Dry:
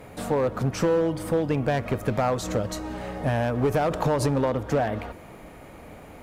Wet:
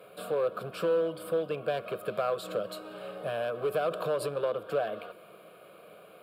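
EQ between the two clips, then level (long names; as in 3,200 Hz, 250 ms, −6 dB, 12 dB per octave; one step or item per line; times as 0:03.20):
Chebyshev high-pass filter 200 Hz, order 3
phaser with its sweep stopped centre 1,300 Hz, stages 8
−2.5 dB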